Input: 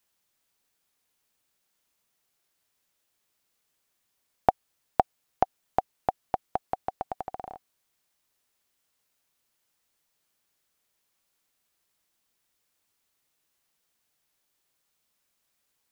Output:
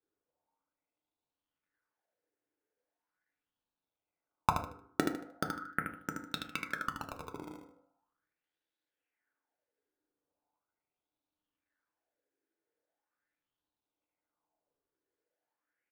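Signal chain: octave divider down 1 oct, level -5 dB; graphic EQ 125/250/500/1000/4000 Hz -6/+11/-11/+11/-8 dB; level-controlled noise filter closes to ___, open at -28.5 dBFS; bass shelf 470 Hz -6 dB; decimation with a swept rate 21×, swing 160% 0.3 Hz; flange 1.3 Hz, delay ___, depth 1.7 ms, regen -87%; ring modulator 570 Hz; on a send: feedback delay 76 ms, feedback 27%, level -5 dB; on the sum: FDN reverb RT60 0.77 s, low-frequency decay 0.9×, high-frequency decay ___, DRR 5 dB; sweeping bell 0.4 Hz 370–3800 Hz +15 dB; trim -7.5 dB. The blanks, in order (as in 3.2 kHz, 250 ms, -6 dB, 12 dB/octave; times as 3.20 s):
2.1 kHz, 9.1 ms, 0.3×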